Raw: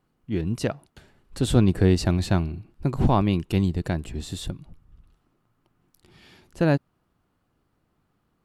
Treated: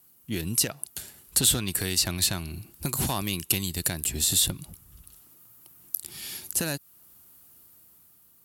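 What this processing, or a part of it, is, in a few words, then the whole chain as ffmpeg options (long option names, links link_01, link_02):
FM broadcast chain: -filter_complex "[0:a]highpass=frequency=46:width=0.5412,highpass=frequency=46:width=1.3066,dynaudnorm=framelen=170:gausssize=9:maxgain=4.5dB,acrossover=split=1100|4200[link_01][link_02][link_03];[link_01]acompressor=threshold=-26dB:ratio=4[link_04];[link_02]acompressor=threshold=-33dB:ratio=4[link_05];[link_03]acompressor=threshold=-47dB:ratio=4[link_06];[link_04][link_05][link_06]amix=inputs=3:normalize=0,aemphasis=mode=production:type=75fm,alimiter=limit=-16.5dB:level=0:latency=1:release=424,asoftclip=type=hard:threshold=-20dB,lowpass=frequency=15000:width=0.5412,lowpass=frequency=15000:width=1.3066,aemphasis=mode=production:type=75fm"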